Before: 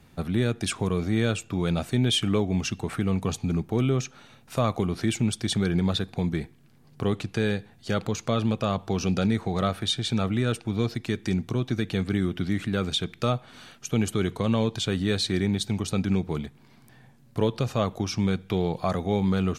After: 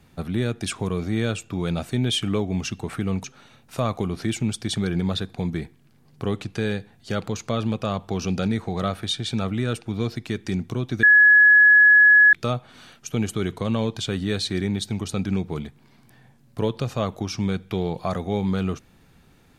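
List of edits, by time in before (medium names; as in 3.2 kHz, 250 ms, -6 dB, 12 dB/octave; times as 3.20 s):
3.24–4.03 s: delete
11.82–13.12 s: bleep 1.69 kHz -9.5 dBFS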